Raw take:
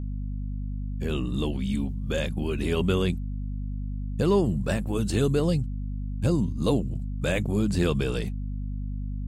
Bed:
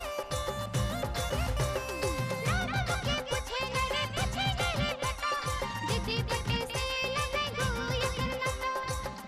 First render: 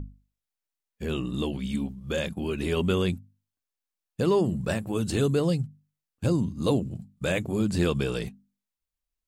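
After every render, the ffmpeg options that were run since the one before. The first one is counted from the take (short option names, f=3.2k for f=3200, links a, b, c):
-af "bandreject=f=50:t=h:w=6,bandreject=f=100:t=h:w=6,bandreject=f=150:t=h:w=6,bandreject=f=200:t=h:w=6,bandreject=f=250:t=h:w=6"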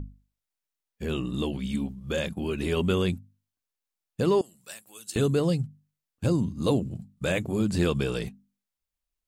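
-filter_complex "[0:a]asettb=1/sr,asplit=3[a][b][c];[a]atrim=end=4.414[d];[b]atrim=start=4.41:end=5.16,asetpts=PTS-STARTPTS,afade=t=in:d=0.004:c=qsin,afade=t=out:st=0.746:d=0.004:c=qsin,aderivative[e];[c]atrim=start=5.156[f];[d][e]acrossfade=d=0.004:c1=hsin:c2=qsin[g];[g][f]acrossfade=d=0.004:c1=qsin:c2=hsin"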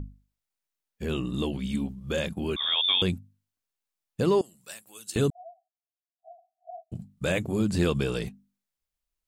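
-filter_complex "[0:a]asettb=1/sr,asplit=3[a][b][c];[a]atrim=end=2.564[d];[b]atrim=start=2.56:end=3.02,asetpts=PTS-STARTPTS,afade=t=in:d=0.004:c=qsin,afade=t=out:st=0.456:d=0.004:c=qsin,lowpass=f=3.1k:t=q:w=0.5098,lowpass=f=3.1k:t=q:w=0.6013,lowpass=f=3.1k:t=q:w=0.9,lowpass=f=3.1k:t=q:w=2.563,afreqshift=-3700[e];[c]atrim=start=3.016[f];[d][e]acrossfade=d=0.004:c1=hsin:c2=qsin[g];[g][f]acrossfade=d=0.004:c1=qsin:c2=hsin,asettb=1/sr,asplit=3[h][i][j];[h]atrim=end=5.304[k];[i]atrim=start=5.3:end=6.92,asetpts=PTS-STARTPTS,afade=t=in:d=0.004:c=qsin,afade=t=out:st=1.616:d=0.004:c=qsin,asuperpass=centerf=700:order=12:qfactor=6.1[l];[j]atrim=start=6.916[m];[k][l]acrossfade=d=0.004:c1=hsin:c2=qsin[n];[n][m]acrossfade=d=0.004:c1=qsin:c2=hsin"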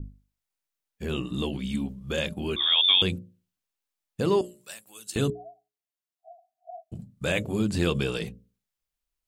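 -af "bandreject=f=60:t=h:w=6,bandreject=f=120:t=h:w=6,bandreject=f=180:t=h:w=6,bandreject=f=240:t=h:w=6,bandreject=f=300:t=h:w=6,bandreject=f=360:t=h:w=6,bandreject=f=420:t=h:w=6,bandreject=f=480:t=h:w=6,bandreject=f=540:t=h:w=6,bandreject=f=600:t=h:w=6,adynamicequalizer=threshold=0.01:dfrequency=3000:dqfactor=1.6:tfrequency=3000:tqfactor=1.6:attack=5:release=100:ratio=0.375:range=2.5:mode=boostabove:tftype=bell"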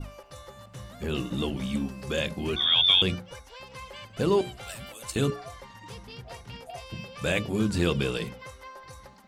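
-filter_complex "[1:a]volume=-12dB[a];[0:a][a]amix=inputs=2:normalize=0"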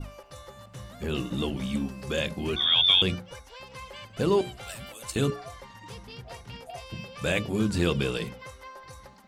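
-af anull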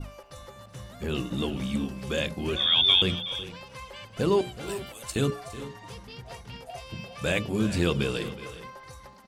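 -af "aecho=1:1:373|413:0.168|0.15"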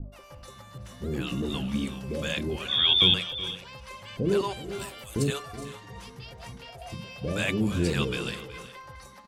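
-filter_complex "[0:a]acrossover=split=580[a][b];[b]adelay=120[c];[a][c]amix=inputs=2:normalize=0"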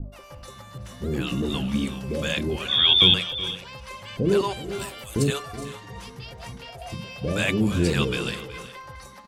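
-af "volume=4dB"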